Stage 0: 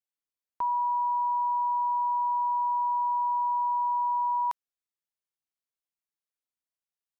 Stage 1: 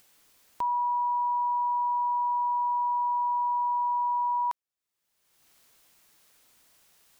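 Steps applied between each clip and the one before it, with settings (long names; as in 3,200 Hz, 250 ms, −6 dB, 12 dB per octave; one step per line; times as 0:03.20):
upward compression, threshold −38 dBFS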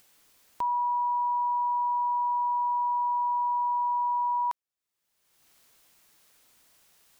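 no processing that can be heard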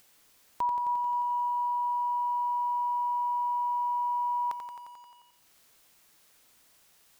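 feedback echo at a low word length 88 ms, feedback 80%, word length 10 bits, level −7 dB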